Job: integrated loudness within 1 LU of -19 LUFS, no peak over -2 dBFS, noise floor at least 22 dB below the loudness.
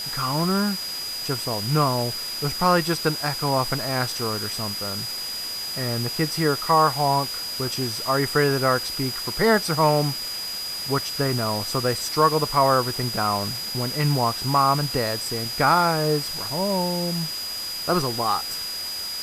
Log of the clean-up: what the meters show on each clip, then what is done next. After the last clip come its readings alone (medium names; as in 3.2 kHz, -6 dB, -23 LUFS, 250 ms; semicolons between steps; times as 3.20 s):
steady tone 4.9 kHz; tone level -29 dBFS; noise floor -31 dBFS; noise floor target -45 dBFS; loudness -23.0 LUFS; peak level -6.0 dBFS; loudness target -19.0 LUFS
-> band-stop 4.9 kHz, Q 30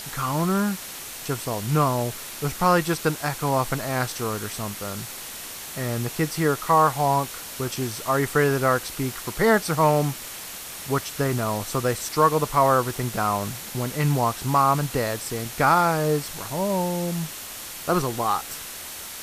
steady tone not found; noise floor -37 dBFS; noise floor target -46 dBFS
-> noise reduction 9 dB, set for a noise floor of -37 dBFS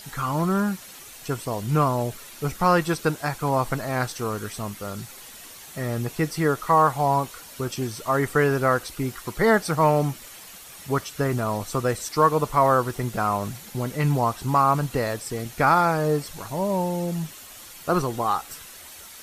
noise floor -44 dBFS; noise floor target -46 dBFS
-> noise reduction 6 dB, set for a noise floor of -44 dBFS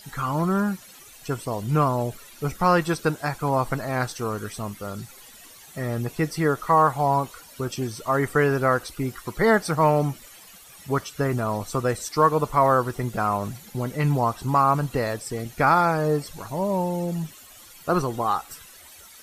noise floor -48 dBFS; loudness -24.0 LUFS; peak level -6.0 dBFS; loudness target -19.0 LUFS
-> trim +5 dB; peak limiter -2 dBFS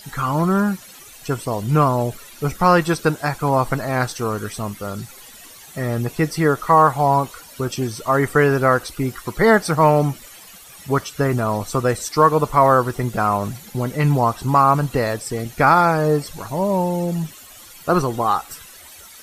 loudness -19.0 LUFS; peak level -2.0 dBFS; noise floor -43 dBFS